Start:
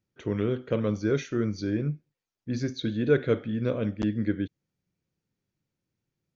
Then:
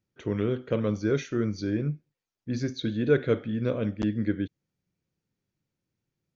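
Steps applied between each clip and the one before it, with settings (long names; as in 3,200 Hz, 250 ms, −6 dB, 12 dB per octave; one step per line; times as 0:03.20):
no processing that can be heard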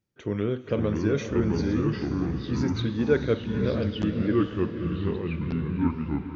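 delay with pitch and tempo change per echo 442 ms, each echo −4 semitones, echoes 2
feedback delay with all-pass diffusion 500 ms, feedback 48%, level −9.5 dB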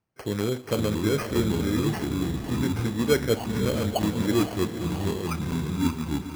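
low-pass with resonance 3,000 Hz, resonance Q 4.9
decimation without filtering 12×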